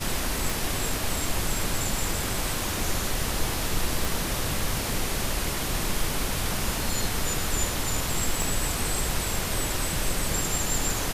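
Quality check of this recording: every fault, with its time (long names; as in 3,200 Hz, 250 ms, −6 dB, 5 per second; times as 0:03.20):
0:00.50: click
0:04.05: click
0:08.42: click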